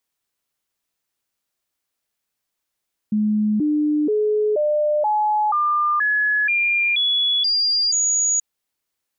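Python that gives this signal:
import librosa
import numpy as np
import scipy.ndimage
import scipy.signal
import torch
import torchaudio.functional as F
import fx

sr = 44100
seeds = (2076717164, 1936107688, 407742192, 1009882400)

y = fx.stepped_sweep(sr, from_hz=212.0, direction='up', per_octave=2, tones=11, dwell_s=0.48, gap_s=0.0, level_db=-16.0)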